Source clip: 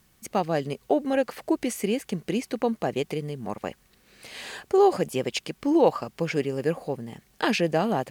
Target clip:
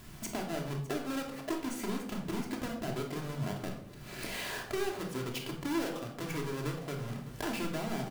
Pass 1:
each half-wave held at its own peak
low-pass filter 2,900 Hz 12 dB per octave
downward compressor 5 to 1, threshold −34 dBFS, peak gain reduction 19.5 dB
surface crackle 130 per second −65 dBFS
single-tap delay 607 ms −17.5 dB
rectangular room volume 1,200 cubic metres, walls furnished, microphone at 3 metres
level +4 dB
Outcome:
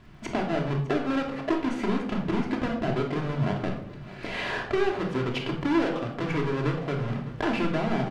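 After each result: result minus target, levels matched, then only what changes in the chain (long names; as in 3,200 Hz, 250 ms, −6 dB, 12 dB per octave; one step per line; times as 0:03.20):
downward compressor: peak gain reduction −9.5 dB; 4,000 Hz band −4.5 dB
change: downward compressor 5 to 1, threshold −45.5 dBFS, peak gain reduction 28.5 dB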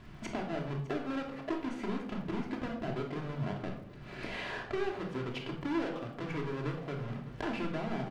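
4,000 Hz band −4.0 dB
remove: low-pass filter 2,900 Hz 12 dB per octave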